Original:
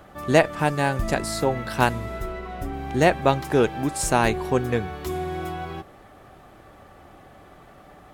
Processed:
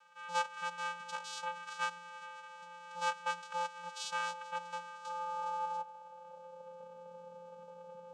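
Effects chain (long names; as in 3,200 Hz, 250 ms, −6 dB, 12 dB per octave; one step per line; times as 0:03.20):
channel vocoder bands 4, square 174 Hz
phaser with its sweep stopped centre 830 Hz, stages 4
high-pass filter sweep 1,700 Hz → 420 Hz, 0:04.75–0:06.95
level +2 dB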